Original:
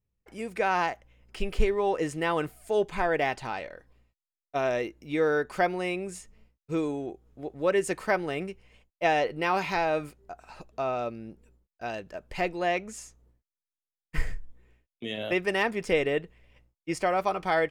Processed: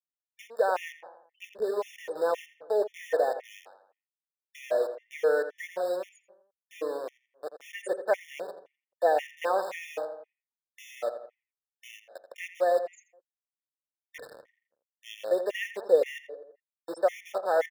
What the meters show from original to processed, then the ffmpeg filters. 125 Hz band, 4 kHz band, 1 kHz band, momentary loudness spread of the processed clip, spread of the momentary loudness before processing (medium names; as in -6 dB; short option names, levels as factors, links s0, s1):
under -25 dB, -7.0 dB, -4.0 dB, 21 LU, 16 LU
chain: -filter_complex "[0:a]afftfilt=real='re*gte(hypot(re,im),0.0251)':imag='im*gte(hypot(re,im),0.0251)':win_size=1024:overlap=0.75,equalizer=f=670:w=0.95:g=-2,acrossover=split=4600[s0][s1];[s0]aeval=exprs='val(0)*gte(abs(val(0)),0.0237)':c=same[s2];[s2][s1]amix=inputs=2:normalize=0,highpass=f=530:t=q:w=5.7,asplit=2[s3][s4];[s4]adelay=84,lowpass=f=2700:p=1,volume=0.316,asplit=2[s5][s6];[s6]adelay=84,lowpass=f=2700:p=1,volume=0.5,asplit=2[s7][s8];[s8]adelay=84,lowpass=f=2700:p=1,volume=0.5,asplit=2[s9][s10];[s10]adelay=84,lowpass=f=2700:p=1,volume=0.5,asplit=2[s11][s12];[s12]adelay=84,lowpass=f=2700:p=1,volume=0.5[s13];[s5][s7][s9][s11][s13]amix=inputs=5:normalize=0[s14];[s3][s14]amix=inputs=2:normalize=0,afftfilt=real='re*gt(sin(2*PI*1.9*pts/sr)*(1-2*mod(floor(b*sr/1024/1800),2)),0)':imag='im*gt(sin(2*PI*1.9*pts/sr)*(1-2*mod(floor(b*sr/1024/1800),2)),0)':win_size=1024:overlap=0.75,volume=0.596"